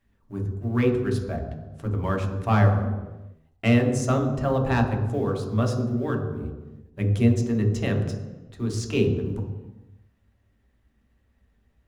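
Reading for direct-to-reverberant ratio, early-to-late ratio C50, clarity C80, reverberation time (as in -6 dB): 1.0 dB, 5.5 dB, 7.5 dB, no single decay rate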